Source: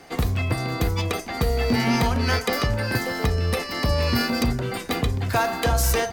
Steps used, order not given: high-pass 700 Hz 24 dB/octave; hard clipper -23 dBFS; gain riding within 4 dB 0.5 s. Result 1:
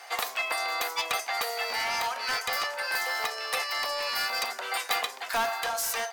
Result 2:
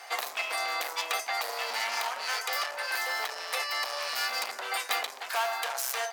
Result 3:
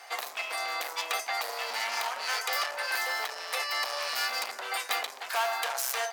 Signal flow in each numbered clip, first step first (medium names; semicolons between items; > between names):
high-pass > hard clipper > gain riding; hard clipper > high-pass > gain riding; hard clipper > gain riding > high-pass